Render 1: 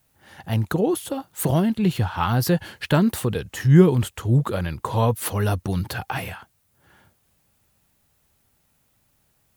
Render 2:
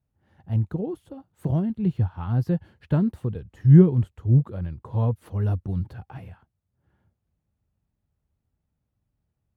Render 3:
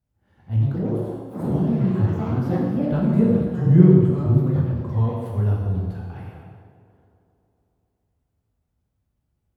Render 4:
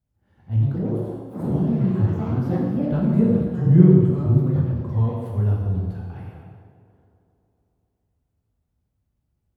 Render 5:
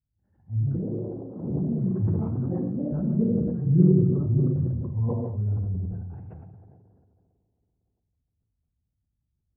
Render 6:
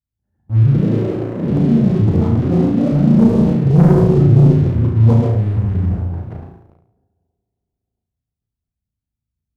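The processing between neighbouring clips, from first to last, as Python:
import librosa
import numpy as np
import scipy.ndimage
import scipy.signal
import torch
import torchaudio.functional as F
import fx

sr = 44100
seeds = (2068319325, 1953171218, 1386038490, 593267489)

y1 = scipy.signal.sosfilt(scipy.signal.butter(2, 46.0, 'highpass', fs=sr, output='sos'), x)
y1 = fx.tilt_eq(y1, sr, slope=-4.0)
y1 = fx.upward_expand(y1, sr, threshold_db=-19.0, expansion=1.5)
y1 = F.gain(torch.from_numpy(y1), -8.5).numpy()
y2 = fx.echo_wet_bandpass(y1, sr, ms=137, feedback_pct=75, hz=490.0, wet_db=-13.5)
y2 = fx.rev_plate(y2, sr, seeds[0], rt60_s=1.5, hf_ratio=0.9, predelay_ms=0, drr_db=-3.5)
y2 = fx.echo_pitch(y2, sr, ms=207, semitones=4, count=3, db_per_echo=-6.0)
y2 = F.gain(torch.from_numpy(y2), -2.5).numpy()
y3 = fx.low_shelf(y2, sr, hz=430.0, db=3.5)
y3 = F.gain(torch.from_numpy(y3), -3.0).numpy()
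y4 = fx.envelope_sharpen(y3, sr, power=1.5)
y4 = scipy.signal.sosfilt(scipy.signal.butter(2, 1700.0, 'lowpass', fs=sr, output='sos'), y4)
y4 = fx.sustainer(y4, sr, db_per_s=30.0)
y4 = F.gain(torch.from_numpy(y4), -6.5).numpy()
y5 = fx.leveller(y4, sr, passes=3)
y5 = fx.room_flutter(y5, sr, wall_m=6.0, rt60_s=0.52)
y5 = F.gain(torch.from_numpy(y5), 1.0).numpy()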